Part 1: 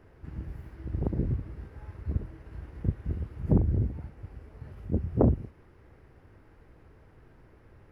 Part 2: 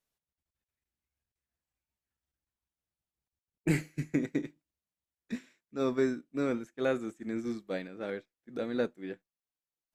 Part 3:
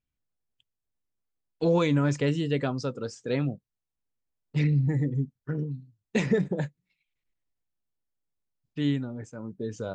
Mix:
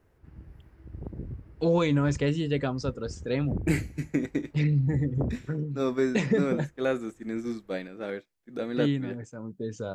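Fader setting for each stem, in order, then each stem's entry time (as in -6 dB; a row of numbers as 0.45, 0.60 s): -9.0, +2.5, -0.5 dB; 0.00, 0.00, 0.00 s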